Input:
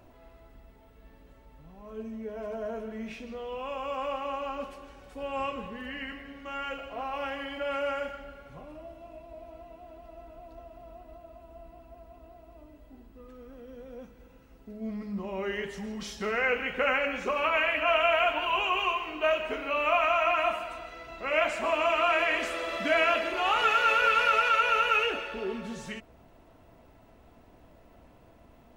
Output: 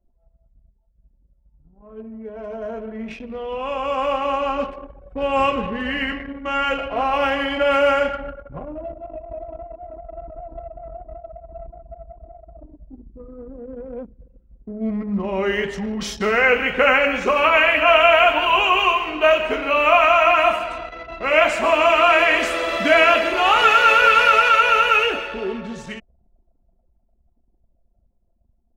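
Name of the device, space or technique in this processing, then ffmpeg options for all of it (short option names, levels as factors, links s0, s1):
voice memo with heavy noise removal: -af "anlmdn=0.0631,dynaudnorm=f=350:g=21:m=5.31"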